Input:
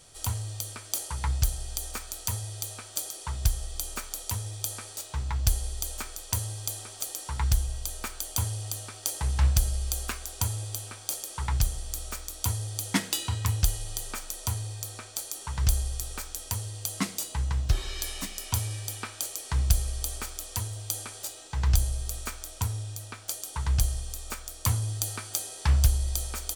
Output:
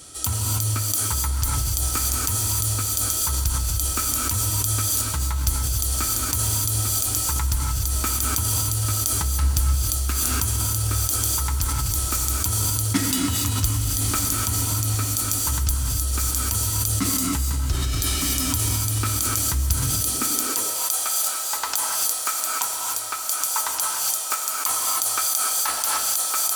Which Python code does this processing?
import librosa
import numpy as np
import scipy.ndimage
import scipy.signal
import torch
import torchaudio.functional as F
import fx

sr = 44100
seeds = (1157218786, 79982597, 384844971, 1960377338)

p1 = fx.high_shelf(x, sr, hz=3900.0, db=9.5)
p2 = fx.small_body(p1, sr, hz=(290.0, 1300.0), ring_ms=40, db=13)
p3 = p2 + fx.echo_diffused(p2, sr, ms=455, feedback_pct=73, wet_db=-14, dry=0)
p4 = fx.rev_gated(p3, sr, seeds[0], gate_ms=320, shape='rising', drr_db=1.5)
p5 = fx.filter_sweep_highpass(p4, sr, from_hz=60.0, to_hz=740.0, start_s=19.6, end_s=20.93, q=1.8)
p6 = fx.over_compress(p5, sr, threshold_db=-26.0, ratio=-0.5)
p7 = p5 + (p6 * librosa.db_to_amplitude(2.0))
y = p7 * librosa.db_to_amplitude(-4.5)